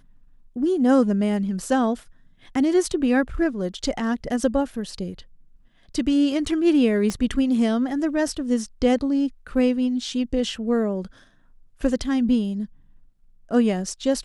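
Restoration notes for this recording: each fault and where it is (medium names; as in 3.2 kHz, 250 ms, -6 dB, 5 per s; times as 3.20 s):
7.10 s: pop -13 dBFS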